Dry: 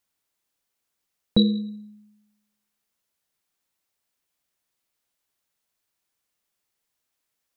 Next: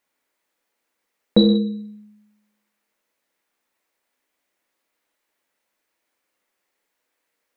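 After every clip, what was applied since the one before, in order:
graphic EQ with 10 bands 125 Hz −8 dB, 250 Hz +9 dB, 500 Hz +9 dB, 1,000 Hz +5 dB, 2,000 Hz +9 dB
reverb whose tail is shaped and stops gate 220 ms falling, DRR 2.5 dB
level −2 dB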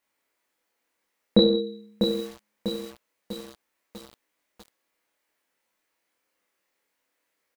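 double-tracking delay 26 ms −2.5 dB
feedback echo at a low word length 646 ms, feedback 55%, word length 6 bits, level −6 dB
level −3 dB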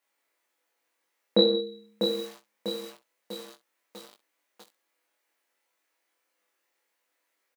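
high-pass filter 320 Hz 12 dB per octave
on a send: ambience of single reflections 20 ms −7 dB, 64 ms −17.5 dB
on the sum: level −1 dB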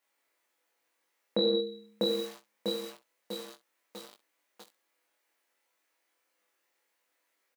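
brickwall limiter −18 dBFS, peak gain reduction 10 dB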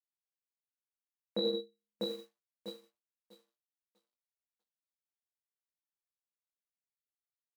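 log-companded quantiser 8 bits
expander for the loud parts 2.5 to 1, over −50 dBFS
level −4 dB

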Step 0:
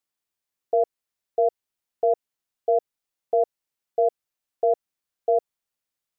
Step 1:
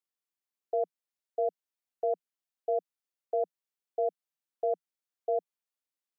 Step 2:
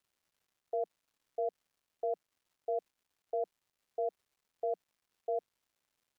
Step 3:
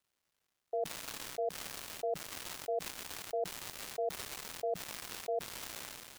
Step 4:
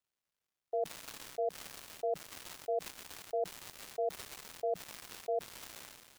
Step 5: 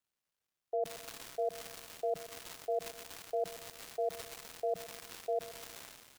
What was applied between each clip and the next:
Butterworth high-pass 170 Hz 96 dB per octave; level −8.5 dB
surface crackle 440 per second −62 dBFS; level −5 dB
level that may fall only so fast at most 27 dB per second; level −1 dB
expander for the loud parts 1.5 to 1, over −51 dBFS; level +1.5 dB
repeating echo 126 ms, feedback 51%, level −16.5 dB

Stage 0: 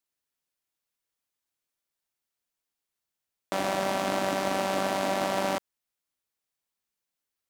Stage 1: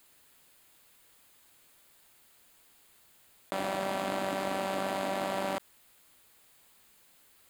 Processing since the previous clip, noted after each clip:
parametric band 5,700 Hz −11 dB 0.26 octaves
envelope flattener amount 50%
level −5.5 dB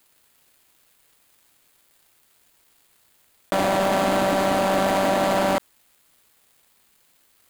leveller curve on the samples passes 3
level +4 dB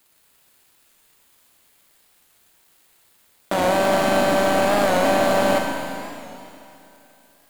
four-comb reverb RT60 2.9 s, combs from 33 ms, DRR 1 dB
wow of a warped record 45 rpm, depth 100 cents

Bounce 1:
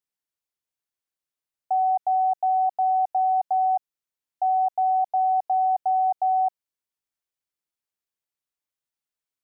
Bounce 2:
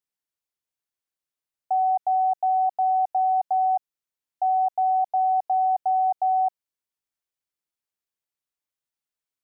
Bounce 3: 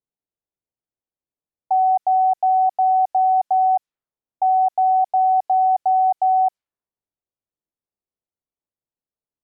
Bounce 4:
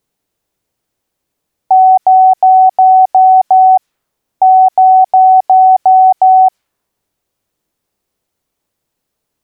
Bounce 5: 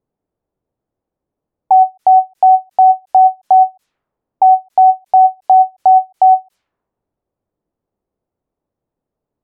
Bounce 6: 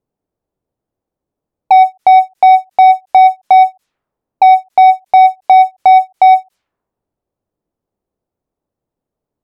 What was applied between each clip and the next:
no processing that can be heard
low-pass that shuts in the quiet parts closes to 650 Hz, open at −21.5 dBFS; level +5 dB
boost into a limiter +22 dB; level −1 dB
low-pass that shuts in the quiet parts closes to 800 Hz, open at −6 dBFS; every ending faded ahead of time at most 400 dB per second; level −1 dB
leveller curve on the samples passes 1; level +1.5 dB

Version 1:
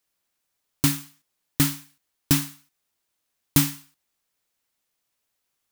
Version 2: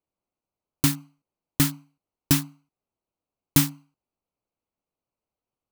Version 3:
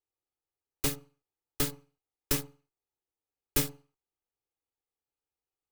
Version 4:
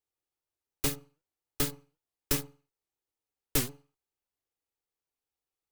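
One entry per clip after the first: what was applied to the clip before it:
adaptive Wiener filter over 25 samples
lower of the sound and its delayed copy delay 2.4 ms; level −6 dB
wow of a warped record 78 rpm, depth 250 cents

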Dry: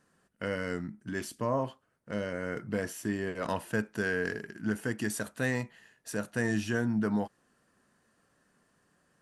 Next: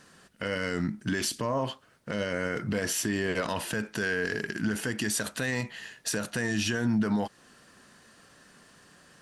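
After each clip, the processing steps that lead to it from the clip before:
parametric band 4,000 Hz +8.5 dB 1.9 octaves
in parallel at +1 dB: downward compressor, threshold −38 dBFS, peak gain reduction 14 dB
on the sum: brickwall limiter −24 dBFS, peak gain reduction 11 dB
level +5 dB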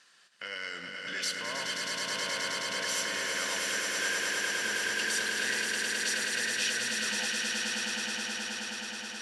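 resonant band-pass 3,600 Hz, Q 0.79
on a send: echo that builds up and dies away 106 ms, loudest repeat 8, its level −5 dB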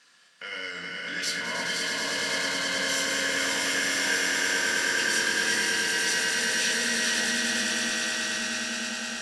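feedback delay that plays each chunk backwards 254 ms, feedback 73%, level −4.5 dB
rectangular room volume 260 cubic metres, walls furnished, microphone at 1.8 metres

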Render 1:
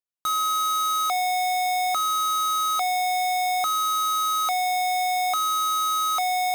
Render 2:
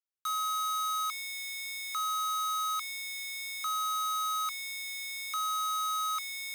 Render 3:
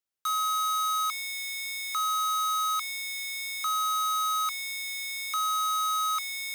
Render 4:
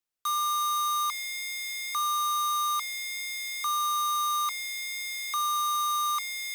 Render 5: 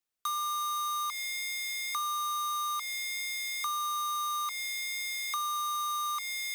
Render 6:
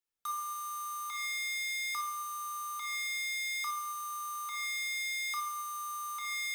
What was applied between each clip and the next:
Butterworth high-pass 1,000 Hz 96 dB per octave; level −8 dB
dynamic equaliser 800 Hz, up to +4 dB, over −57 dBFS, Q 4.1; level +4 dB
frequency shifter −76 Hz
downward compressor, threshold −30 dBFS, peak gain reduction 5 dB
rectangular room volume 4,000 cubic metres, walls furnished, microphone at 4.2 metres; level −7 dB

